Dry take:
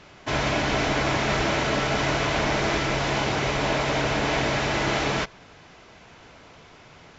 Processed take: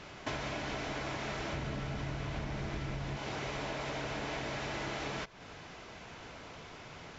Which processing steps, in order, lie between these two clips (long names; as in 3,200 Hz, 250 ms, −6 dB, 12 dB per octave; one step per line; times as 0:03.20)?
0:01.53–0:03.17: bass and treble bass +12 dB, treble −2 dB
downward compressor 12 to 1, threshold −35 dBFS, peak gain reduction 20.5 dB